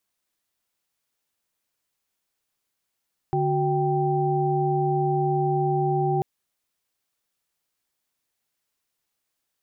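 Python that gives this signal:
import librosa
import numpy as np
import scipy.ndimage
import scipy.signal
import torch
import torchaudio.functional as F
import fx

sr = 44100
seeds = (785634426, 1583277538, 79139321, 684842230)

y = fx.chord(sr, length_s=2.89, notes=(50, 66, 79), wave='sine', level_db=-24.5)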